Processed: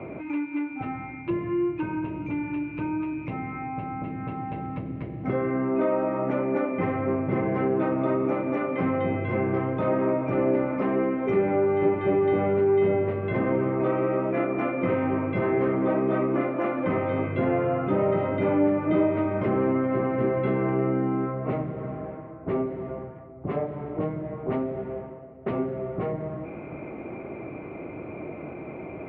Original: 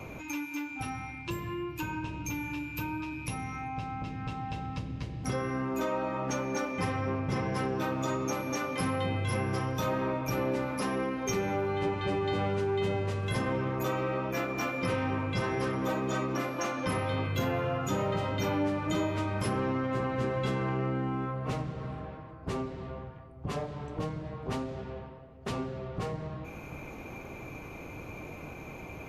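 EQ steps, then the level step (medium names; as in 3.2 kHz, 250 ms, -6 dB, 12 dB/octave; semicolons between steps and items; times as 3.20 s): cabinet simulation 240–3000 Hz, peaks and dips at 360 Hz +6 dB, 640 Hz +7 dB, 1.3 kHz +4 dB, 2.1 kHz +9 dB; tilt EQ -4.5 dB/octave; 0.0 dB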